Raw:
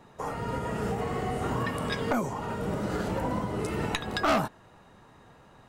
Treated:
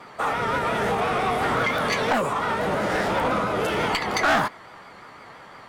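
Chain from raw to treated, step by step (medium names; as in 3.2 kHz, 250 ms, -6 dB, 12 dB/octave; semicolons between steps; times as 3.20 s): vibrato 5.8 Hz 70 cents; overdrive pedal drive 18 dB, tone 2.9 kHz, clips at -16 dBFS; formant shift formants +3 st; trim +2.5 dB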